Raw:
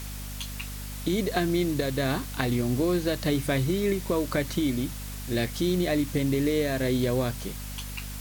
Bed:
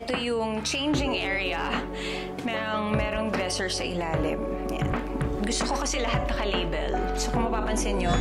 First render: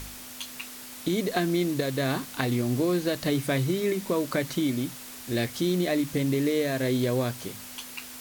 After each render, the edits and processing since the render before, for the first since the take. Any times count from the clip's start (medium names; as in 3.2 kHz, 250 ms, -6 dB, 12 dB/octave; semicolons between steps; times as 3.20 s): de-hum 50 Hz, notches 4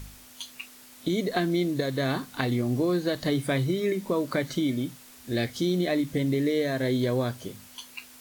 noise print and reduce 8 dB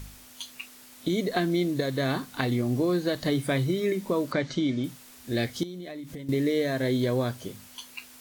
4.32–4.84 s: low-pass 6.5 kHz 24 dB/octave; 5.63–6.29 s: compression 12:1, threshold -35 dBFS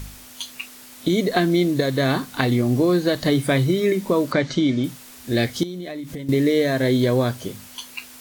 trim +7 dB